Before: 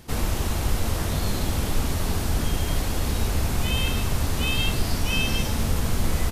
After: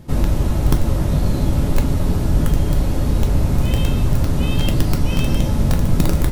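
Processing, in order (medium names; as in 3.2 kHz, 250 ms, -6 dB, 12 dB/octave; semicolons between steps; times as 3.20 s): integer overflow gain 12.5 dB; tilt shelf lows +7.5 dB, about 770 Hz; reverberation, pre-delay 3 ms, DRR 5 dB; trim +1.5 dB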